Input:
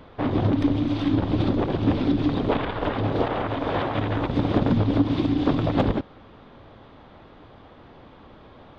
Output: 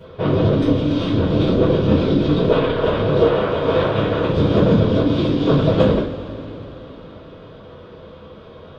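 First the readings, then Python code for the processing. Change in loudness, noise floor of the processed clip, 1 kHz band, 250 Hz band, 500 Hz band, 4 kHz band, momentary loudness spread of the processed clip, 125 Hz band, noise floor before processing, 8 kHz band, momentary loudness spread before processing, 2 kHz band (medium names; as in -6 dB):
+6.5 dB, -40 dBFS, +3.0 dB, +4.5 dB, +10.5 dB, +7.5 dB, 12 LU, +6.5 dB, -49 dBFS, no reading, 4 LU, +5.0 dB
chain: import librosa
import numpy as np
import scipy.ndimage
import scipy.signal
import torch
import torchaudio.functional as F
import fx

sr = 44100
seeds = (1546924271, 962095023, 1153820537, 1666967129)

y = fx.graphic_eq_31(x, sr, hz=(500, 800, 2000), db=(8, -10, -6))
y = fx.rev_double_slope(y, sr, seeds[0], early_s=0.32, late_s=3.8, knee_db=-21, drr_db=-9.5)
y = y * 10.0 ** (-3.0 / 20.0)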